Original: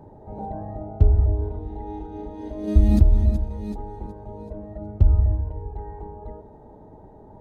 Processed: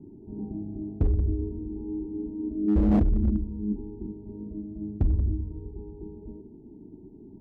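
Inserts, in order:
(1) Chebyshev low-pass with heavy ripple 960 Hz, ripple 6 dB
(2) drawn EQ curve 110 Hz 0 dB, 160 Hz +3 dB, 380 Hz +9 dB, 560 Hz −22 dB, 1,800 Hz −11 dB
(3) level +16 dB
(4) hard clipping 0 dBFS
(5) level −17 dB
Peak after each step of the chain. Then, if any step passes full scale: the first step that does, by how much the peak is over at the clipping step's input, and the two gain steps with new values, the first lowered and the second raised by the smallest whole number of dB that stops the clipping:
−8.0, −6.5, +9.5, 0.0, −17.0 dBFS
step 3, 9.5 dB
step 3 +6 dB, step 5 −7 dB

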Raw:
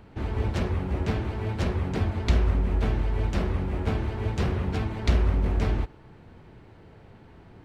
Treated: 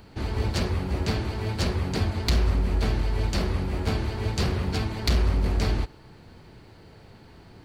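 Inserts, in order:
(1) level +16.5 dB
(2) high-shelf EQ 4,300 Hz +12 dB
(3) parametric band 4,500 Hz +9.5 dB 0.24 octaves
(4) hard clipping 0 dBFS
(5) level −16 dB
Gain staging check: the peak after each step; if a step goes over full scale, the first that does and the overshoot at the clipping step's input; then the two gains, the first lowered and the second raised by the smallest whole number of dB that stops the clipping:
+6.0, +7.0, +8.0, 0.0, −16.0 dBFS
step 1, 8.0 dB
step 1 +8.5 dB, step 5 −8 dB

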